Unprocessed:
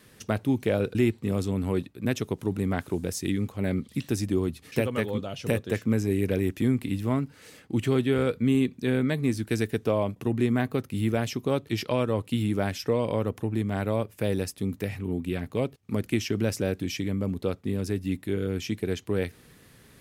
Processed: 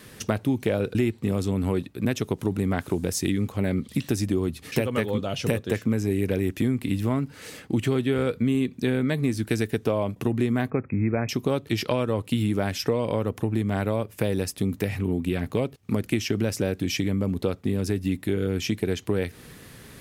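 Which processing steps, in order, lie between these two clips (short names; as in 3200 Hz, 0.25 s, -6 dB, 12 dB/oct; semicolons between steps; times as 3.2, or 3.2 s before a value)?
compressor 3:1, threshold -31 dBFS, peak gain reduction 10 dB; 10.7–11.29 brick-wall FIR low-pass 2600 Hz; gain +8.5 dB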